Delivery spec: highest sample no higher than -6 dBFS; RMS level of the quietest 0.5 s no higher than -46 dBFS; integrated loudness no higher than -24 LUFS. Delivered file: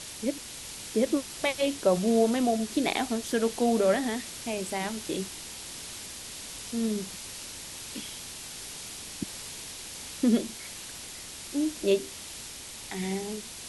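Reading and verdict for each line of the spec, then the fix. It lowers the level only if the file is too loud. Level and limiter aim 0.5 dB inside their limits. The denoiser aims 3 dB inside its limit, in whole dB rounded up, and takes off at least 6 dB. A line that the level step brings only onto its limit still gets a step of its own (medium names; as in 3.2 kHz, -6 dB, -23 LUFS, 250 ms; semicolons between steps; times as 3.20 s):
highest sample -11.0 dBFS: pass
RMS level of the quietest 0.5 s -42 dBFS: fail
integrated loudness -30.5 LUFS: pass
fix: noise reduction 7 dB, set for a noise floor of -42 dBFS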